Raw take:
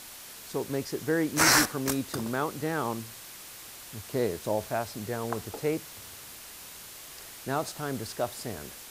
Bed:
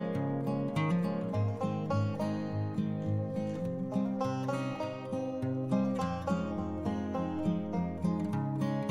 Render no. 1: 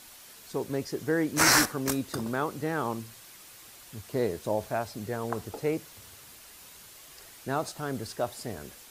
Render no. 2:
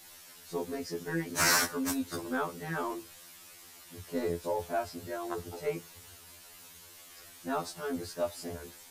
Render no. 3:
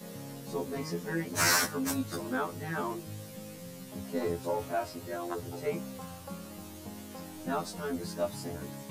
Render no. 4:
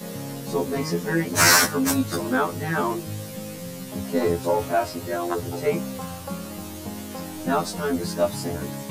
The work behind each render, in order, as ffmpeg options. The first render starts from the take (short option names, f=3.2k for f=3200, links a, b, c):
-af "afftdn=nr=6:nf=-46"
-af "asoftclip=type=tanh:threshold=-15dB,afftfilt=real='re*2*eq(mod(b,4),0)':imag='im*2*eq(mod(b,4),0)':win_size=2048:overlap=0.75"
-filter_complex "[1:a]volume=-11dB[a];[0:a][a]amix=inputs=2:normalize=0"
-af "volume=10dB"